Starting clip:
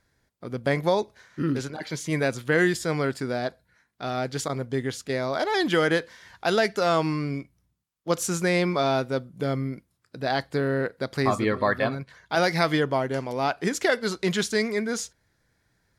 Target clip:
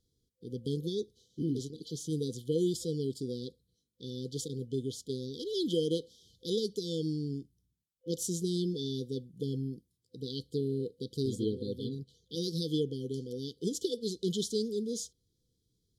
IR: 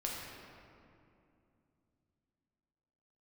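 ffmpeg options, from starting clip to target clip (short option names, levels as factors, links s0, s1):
-af "afftfilt=real='re*(1-between(b*sr/4096,510,3000))':imag='im*(1-between(b*sr/4096,510,3000))':win_size=4096:overlap=0.75,volume=0.473"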